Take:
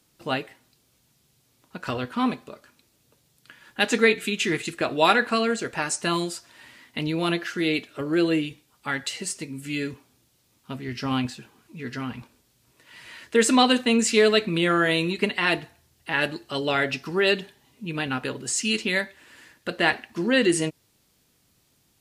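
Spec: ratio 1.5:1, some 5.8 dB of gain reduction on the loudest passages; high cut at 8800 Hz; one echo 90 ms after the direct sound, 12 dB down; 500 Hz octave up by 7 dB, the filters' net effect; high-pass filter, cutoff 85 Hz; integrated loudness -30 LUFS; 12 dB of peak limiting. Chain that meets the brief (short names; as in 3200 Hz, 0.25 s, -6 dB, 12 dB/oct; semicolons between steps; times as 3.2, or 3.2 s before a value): HPF 85 Hz; LPF 8800 Hz; bell 500 Hz +8.5 dB; compressor 1.5:1, threshold -24 dBFS; limiter -18 dBFS; echo 90 ms -12 dB; gain -1.5 dB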